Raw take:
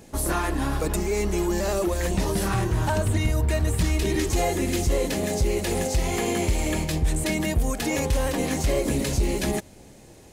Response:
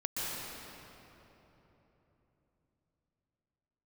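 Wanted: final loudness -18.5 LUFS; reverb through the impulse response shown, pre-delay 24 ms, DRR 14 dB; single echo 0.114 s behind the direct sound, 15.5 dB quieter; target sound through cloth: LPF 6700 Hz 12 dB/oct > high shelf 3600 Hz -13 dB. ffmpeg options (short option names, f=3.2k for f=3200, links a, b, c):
-filter_complex "[0:a]aecho=1:1:114:0.168,asplit=2[a][b];[1:a]atrim=start_sample=2205,adelay=24[c];[b][c]afir=irnorm=-1:irlink=0,volume=-19.5dB[d];[a][d]amix=inputs=2:normalize=0,lowpass=6.7k,highshelf=f=3.6k:g=-13,volume=7dB"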